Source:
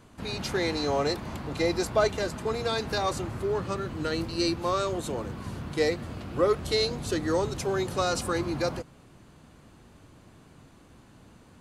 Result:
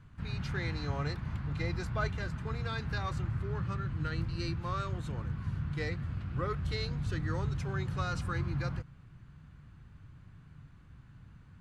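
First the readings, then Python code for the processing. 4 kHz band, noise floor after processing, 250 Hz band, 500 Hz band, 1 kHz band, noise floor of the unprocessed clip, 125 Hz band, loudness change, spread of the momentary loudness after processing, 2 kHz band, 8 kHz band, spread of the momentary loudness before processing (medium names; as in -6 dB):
-12.5 dB, -56 dBFS, -8.0 dB, -15.5 dB, -8.5 dB, -55 dBFS, +3.0 dB, -7.0 dB, 21 LU, -5.0 dB, -17.0 dB, 9 LU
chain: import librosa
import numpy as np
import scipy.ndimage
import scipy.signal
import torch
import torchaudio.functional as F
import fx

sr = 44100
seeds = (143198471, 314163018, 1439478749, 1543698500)

y = fx.curve_eq(x, sr, hz=(150.0, 220.0, 360.0, 640.0, 1500.0, 11000.0), db=(0, -12, -18, -20, -7, -25))
y = y * 10.0 ** (3.5 / 20.0)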